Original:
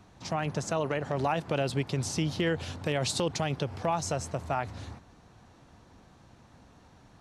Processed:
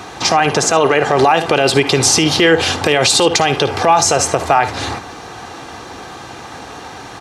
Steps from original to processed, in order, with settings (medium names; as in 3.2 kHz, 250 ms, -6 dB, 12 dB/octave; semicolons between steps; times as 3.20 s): high-pass 240 Hz 6 dB/octave; treble shelf 8.4 kHz -3.5 dB; in parallel at 0 dB: compression, threshold -46 dBFS, peak gain reduction 20 dB; on the sum: bass shelf 390 Hz -6.5 dB; comb 2.5 ms, depth 39%; on a send: early reflections 55 ms -16 dB, 73 ms -17.5 dB; on the sum: loudness maximiser +24.5 dB; trim -1 dB